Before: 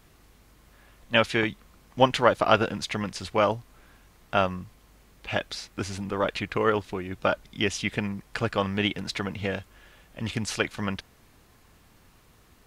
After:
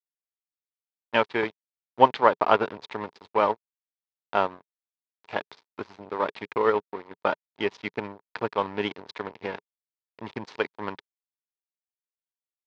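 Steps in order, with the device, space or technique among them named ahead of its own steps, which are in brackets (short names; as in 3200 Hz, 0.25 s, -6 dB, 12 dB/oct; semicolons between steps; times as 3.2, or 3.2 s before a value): blown loudspeaker (crossover distortion -32 dBFS; speaker cabinet 140–4200 Hz, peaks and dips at 170 Hz -4 dB, 420 Hz +7 dB, 940 Hz +10 dB, 2900 Hz -5 dB); gain -1 dB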